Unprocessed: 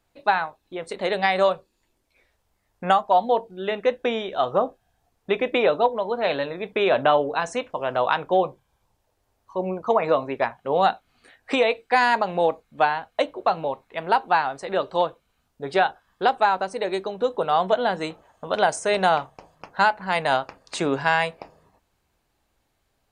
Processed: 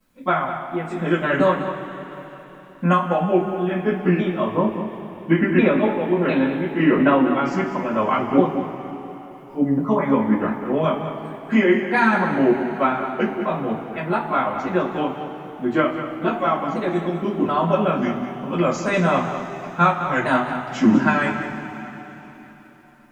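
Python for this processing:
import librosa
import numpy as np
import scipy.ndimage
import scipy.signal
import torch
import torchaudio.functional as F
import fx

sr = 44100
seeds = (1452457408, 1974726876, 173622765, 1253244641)

p1 = fx.pitch_ramps(x, sr, semitones=-5.5, every_ms=698)
p2 = fx.graphic_eq(p1, sr, hz=(250, 500, 4000, 8000), db=(11, -12, -11, -6))
p3 = fx.quant_dither(p2, sr, seeds[0], bits=12, dither='none')
p4 = p3 + fx.echo_single(p3, sr, ms=199, db=-11.0, dry=0)
p5 = fx.rev_double_slope(p4, sr, seeds[1], early_s=0.2, late_s=4.0, knee_db=-21, drr_db=-10.0)
y = F.gain(torch.from_numpy(p5), -3.5).numpy()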